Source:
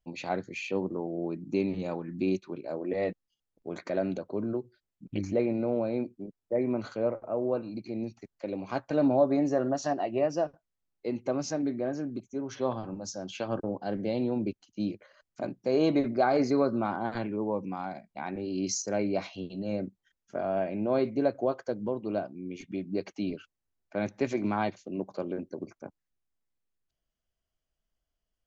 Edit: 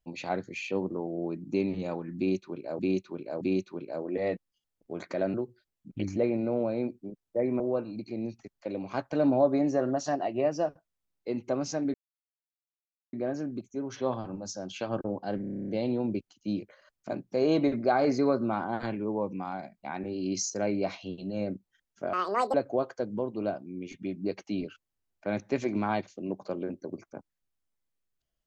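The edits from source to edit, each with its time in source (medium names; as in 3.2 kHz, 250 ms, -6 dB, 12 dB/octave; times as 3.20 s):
2.17–2.79 s: loop, 3 plays
4.10–4.50 s: delete
6.76–7.38 s: delete
11.72 s: insert silence 1.19 s
14.00 s: stutter 0.03 s, 10 plays
20.45–21.23 s: speed 190%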